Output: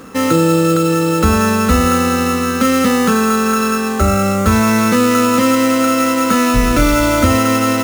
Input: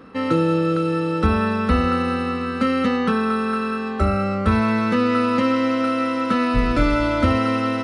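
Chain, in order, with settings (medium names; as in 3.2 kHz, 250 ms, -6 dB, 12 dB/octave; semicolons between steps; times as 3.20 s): treble shelf 4.5 kHz +9 dB; in parallel at +1 dB: peak limiter -15 dBFS, peak gain reduction 9.5 dB; on the sum: sample-rate reducer 8 kHz, jitter 0%; trim +1.5 dB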